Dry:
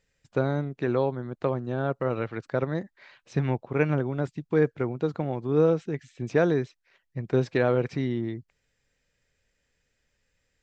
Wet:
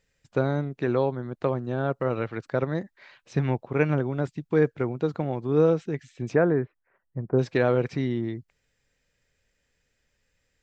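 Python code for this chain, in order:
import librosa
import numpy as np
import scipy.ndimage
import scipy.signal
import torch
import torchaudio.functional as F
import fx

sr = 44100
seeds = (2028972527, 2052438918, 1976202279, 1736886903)

y = fx.lowpass(x, sr, hz=fx.line((6.34, 2100.0), (7.38, 1200.0)), slope=24, at=(6.34, 7.38), fade=0.02)
y = F.gain(torch.from_numpy(y), 1.0).numpy()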